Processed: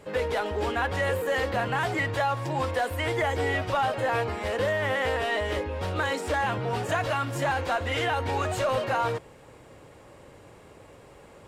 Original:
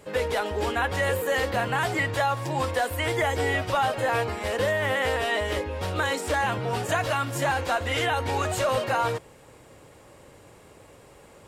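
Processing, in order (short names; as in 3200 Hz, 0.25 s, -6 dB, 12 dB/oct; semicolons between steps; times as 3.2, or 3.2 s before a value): high shelf 5400 Hz -8 dB; in parallel at -6 dB: soft clip -32 dBFS, distortion -7 dB; on the sum: gain -2.5 dB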